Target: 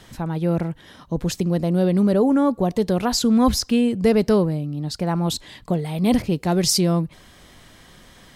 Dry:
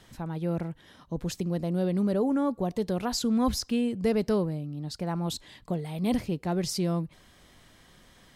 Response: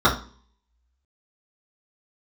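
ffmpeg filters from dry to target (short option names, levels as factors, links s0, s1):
-filter_complex "[0:a]asettb=1/sr,asplit=3[s0][s1][s2];[s0]atrim=end=6.224[s3];[s1]atrim=start=6.22:end=6.81,asetpts=PTS-STARTPTS,afade=t=in:d=0.004:c=qsin,afade=t=out:st=0.586:d=0.004:c=qsin,adynamicequalizer=threshold=0.00447:dfrequency=3000:dqfactor=0.7:tfrequency=3000:tqfactor=0.7:attack=5:release=100:ratio=0.375:range=3:mode=boostabove:tftype=highshelf[s4];[s2]atrim=start=6.806[s5];[s3][s4]acrossfade=d=0.004:c1=hsin:c2=qsin[s6];[s6][s5]acrossfade=d=0.004:c1=qsin:c2=hsin,volume=2.66"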